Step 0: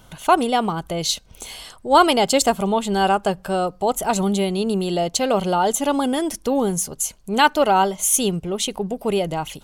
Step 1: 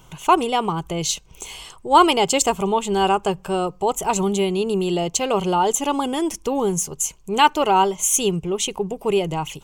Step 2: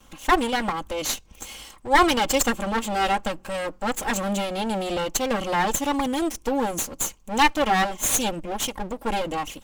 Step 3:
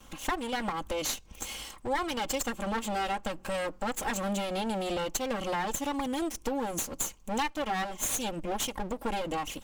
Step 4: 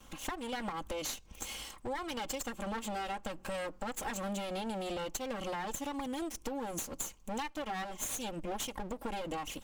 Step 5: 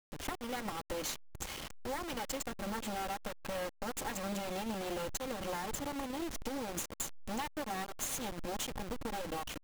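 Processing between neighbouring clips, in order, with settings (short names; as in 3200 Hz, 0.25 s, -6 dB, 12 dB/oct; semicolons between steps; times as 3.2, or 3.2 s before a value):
ripple EQ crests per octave 0.72, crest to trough 8 dB; gain -1 dB
minimum comb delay 3.7 ms; gain -1.5 dB
compressor 5:1, threshold -29 dBFS, peak gain reduction 16 dB
compressor, threshold -31 dBFS, peak gain reduction 6.5 dB; gain -3 dB
level-crossing sampler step -36.5 dBFS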